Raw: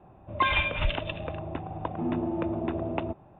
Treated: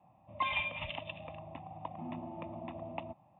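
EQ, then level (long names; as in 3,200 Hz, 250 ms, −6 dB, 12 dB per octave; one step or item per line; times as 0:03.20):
high-pass filter 140 Hz 12 dB per octave
phaser with its sweep stopped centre 1,500 Hz, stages 6
−7.0 dB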